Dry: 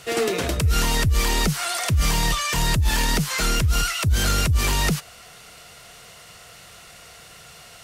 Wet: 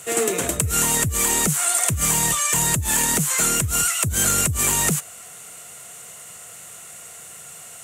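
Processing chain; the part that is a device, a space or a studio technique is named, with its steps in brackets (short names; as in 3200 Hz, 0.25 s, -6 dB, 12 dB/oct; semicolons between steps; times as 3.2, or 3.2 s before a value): budget condenser microphone (HPF 110 Hz 12 dB/oct; resonant high shelf 6100 Hz +7.5 dB, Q 3)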